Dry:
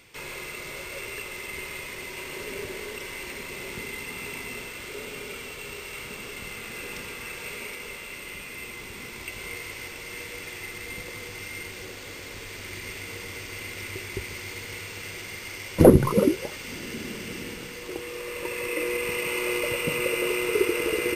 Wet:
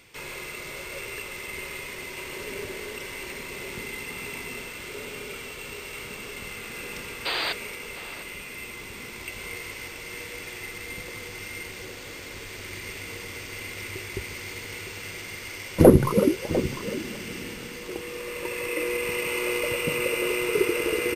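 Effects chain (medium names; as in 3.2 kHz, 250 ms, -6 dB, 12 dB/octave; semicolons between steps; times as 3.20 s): painted sound noise, 7.25–7.53 s, 300–4900 Hz -28 dBFS; echo from a far wall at 120 m, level -12 dB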